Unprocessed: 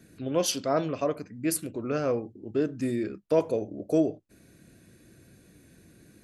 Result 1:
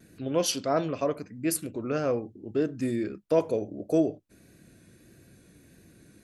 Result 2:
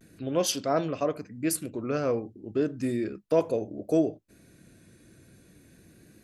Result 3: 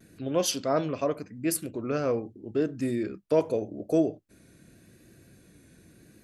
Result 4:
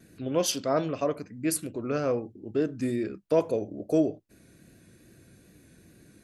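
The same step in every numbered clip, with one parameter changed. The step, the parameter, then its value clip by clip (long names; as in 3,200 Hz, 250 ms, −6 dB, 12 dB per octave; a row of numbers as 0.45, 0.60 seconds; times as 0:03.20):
pitch vibrato, speed: 1.6, 0.35, 0.84, 2.4 Hertz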